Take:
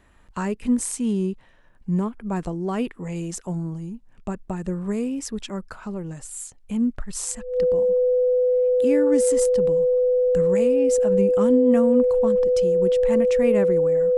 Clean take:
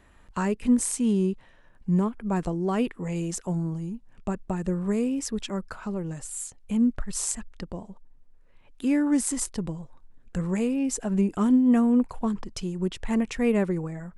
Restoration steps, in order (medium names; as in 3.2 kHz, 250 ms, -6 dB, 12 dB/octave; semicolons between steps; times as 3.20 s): band-stop 500 Hz, Q 30